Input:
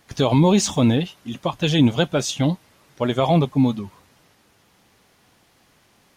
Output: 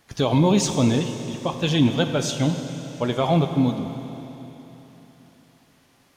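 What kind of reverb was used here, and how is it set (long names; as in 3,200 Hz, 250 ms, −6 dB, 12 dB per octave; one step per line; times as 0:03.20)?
four-comb reverb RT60 3.6 s, combs from 32 ms, DRR 7 dB
level −2.5 dB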